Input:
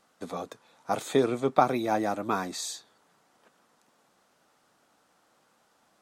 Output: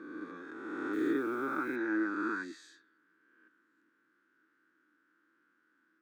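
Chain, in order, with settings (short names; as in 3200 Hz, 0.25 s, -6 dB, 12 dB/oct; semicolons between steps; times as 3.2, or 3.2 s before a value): spectral swells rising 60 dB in 1.95 s; in parallel at +1 dB: limiter -13.5 dBFS, peak gain reduction 9.5 dB; on the sum: double band-pass 700 Hz, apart 2.3 oct; 0.93–1.76 requantised 10-bit, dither triangular; gain -6 dB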